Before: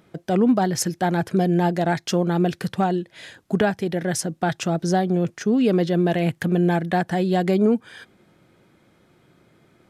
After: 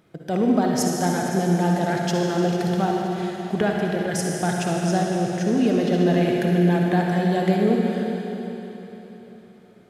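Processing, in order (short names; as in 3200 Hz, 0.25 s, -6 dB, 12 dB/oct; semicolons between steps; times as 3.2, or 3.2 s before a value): 5.7–6.38 flutter echo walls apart 11.9 m, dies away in 0.73 s; reverb RT60 3.8 s, pre-delay 50 ms, DRR -1 dB; gain -3.5 dB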